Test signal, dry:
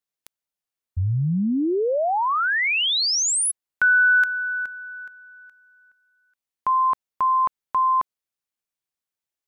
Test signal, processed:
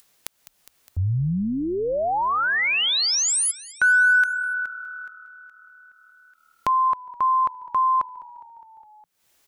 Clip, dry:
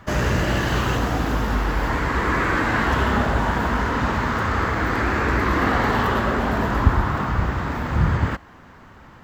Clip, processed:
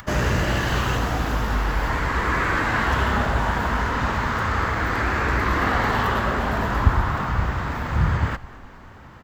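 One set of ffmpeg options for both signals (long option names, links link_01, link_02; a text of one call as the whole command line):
ffmpeg -i in.wav -filter_complex "[0:a]asplit=6[link_01][link_02][link_03][link_04][link_05][link_06];[link_02]adelay=205,afreqshift=-38,volume=-20.5dB[link_07];[link_03]adelay=410,afreqshift=-76,volume=-24.7dB[link_08];[link_04]adelay=615,afreqshift=-114,volume=-28.8dB[link_09];[link_05]adelay=820,afreqshift=-152,volume=-33dB[link_10];[link_06]adelay=1025,afreqshift=-190,volume=-37.1dB[link_11];[link_01][link_07][link_08][link_09][link_10][link_11]amix=inputs=6:normalize=0,adynamicequalizer=threshold=0.0158:dfrequency=290:dqfactor=0.79:tfrequency=290:tqfactor=0.79:attack=5:release=100:ratio=0.375:range=2.5:mode=cutabove:tftype=bell,acompressor=mode=upward:threshold=-44dB:ratio=2.5:attack=44:release=225:knee=2.83:detection=peak" out.wav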